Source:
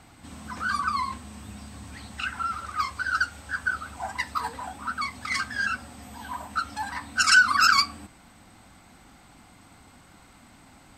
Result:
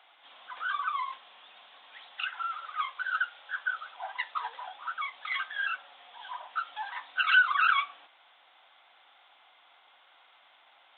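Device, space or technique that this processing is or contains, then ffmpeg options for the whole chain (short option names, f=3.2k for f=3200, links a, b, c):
musical greeting card: -af "aresample=8000,aresample=44100,highpass=f=590:w=0.5412,highpass=f=590:w=1.3066,equalizer=f=3.4k:t=o:w=0.48:g=10,volume=-5dB"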